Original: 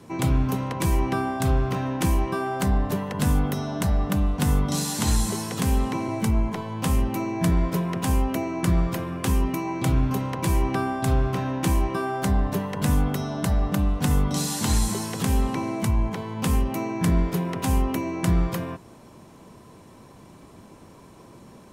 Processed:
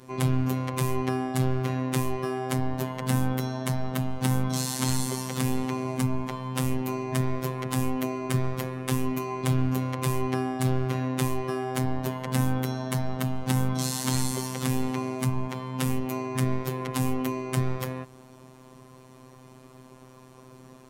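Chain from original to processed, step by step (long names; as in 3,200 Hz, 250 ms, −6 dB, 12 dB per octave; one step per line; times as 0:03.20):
speed change +4%
phases set to zero 129 Hz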